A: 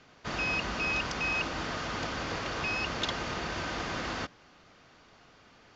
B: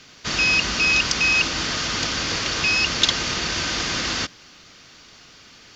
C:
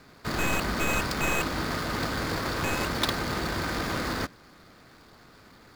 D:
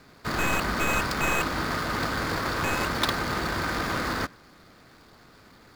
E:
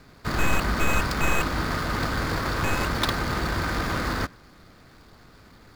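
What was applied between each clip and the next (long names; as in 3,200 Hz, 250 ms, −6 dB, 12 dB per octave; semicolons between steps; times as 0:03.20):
drawn EQ curve 320 Hz 0 dB, 750 Hz −5 dB, 5,300 Hz +12 dB; level +7 dB
running median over 15 samples
dynamic equaliser 1,300 Hz, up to +4 dB, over −43 dBFS, Q 1
low-shelf EQ 110 Hz +10 dB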